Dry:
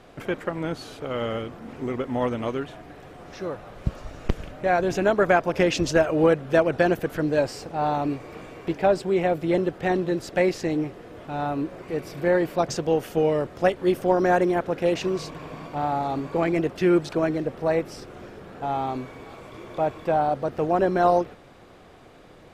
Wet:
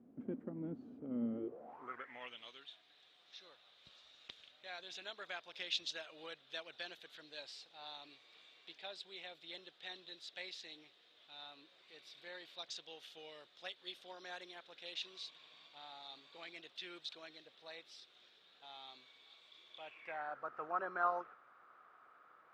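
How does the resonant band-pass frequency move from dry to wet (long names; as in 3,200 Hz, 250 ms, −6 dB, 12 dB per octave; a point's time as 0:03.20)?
resonant band-pass, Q 6.9
0:01.32 240 Hz
0:01.88 1,300 Hz
0:02.44 3,700 Hz
0:19.70 3,700 Hz
0:20.44 1,300 Hz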